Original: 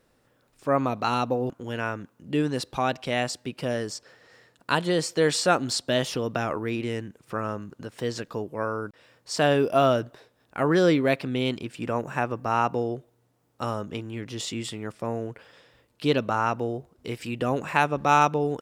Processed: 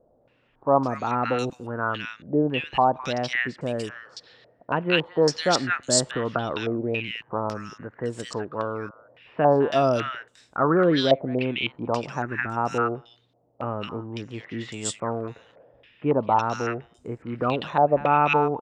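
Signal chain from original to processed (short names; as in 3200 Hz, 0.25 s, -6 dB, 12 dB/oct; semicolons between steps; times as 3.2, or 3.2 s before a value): spectral gain 12.22–12.57, 420–1300 Hz -11 dB; bands offset in time lows, highs 0.21 s, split 1500 Hz; stepped low-pass 3.6 Hz 650–7700 Hz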